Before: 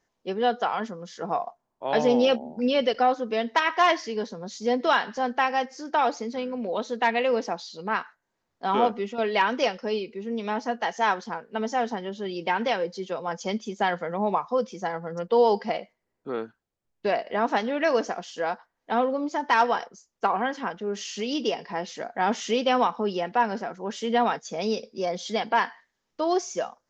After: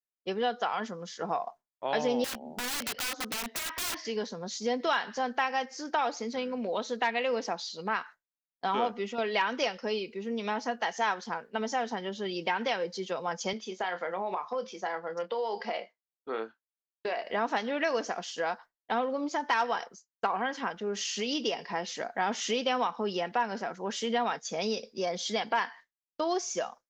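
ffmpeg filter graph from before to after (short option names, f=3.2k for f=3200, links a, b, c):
-filter_complex "[0:a]asettb=1/sr,asplit=3[a][b][c];[a]atrim=end=2.244[d];[b]atrim=start=2.24:end=4.05,asetpts=PTS-STARTPTS,afade=t=in:d=0.004:c=qsin,afade=t=out:st=1.806:d=0.004:c=qsin,acrossover=split=180|4400[e][f][g];[e]acompressor=threshold=-49dB:ratio=4[h];[f]acompressor=threshold=-28dB:ratio=4[i];[g]acompressor=threshold=-54dB:ratio=4[j];[h][i][j]amix=inputs=3:normalize=0,aeval=exprs='(mod(29.9*val(0)+1,2)-1)/29.9':c=same[k];[c]atrim=start=4.046[l];[d][k]acrossfade=d=0.004:c1=hsin:c2=qsin[m];[m][l]acrossfade=d=0.004:c1=qsin:c2=hsin,asettb=1/sr,asplit=3[n][o][p];[n]atrim=end=13.534[q];[o]atrim=start=13.53:end=17.24,asetpts=PTS-STARTPTS,afade=t=in:d=0.004:c=qsin,afade=t=out:st=3.706:d=0.004:c=qsin,highpass=330,lowpass=5.1k,acompressor=threshold=-26dB:ratio=6:attack=3.2:release=140:knee=1:detection=peak,asplit=2[r][s];[s]adelay=27,volume=-10.5dB[t];[r][t]amix=inputs=2:normalize=0,atrim=end_sample=163611[u];[p]atrim=start=17.236[v];[q][u]acrossfade=d=0.004:c1=hsin:c2=qsin[w];[w][v]acrossfade=d=0.004:c1=qsin:c2=hsin,agate=range=-33dB:threshold=-41dB:ratio=3:detection=peak,tiltshelf=f=970:g=-3,acompressor=threshold=-29dB:ratio=2"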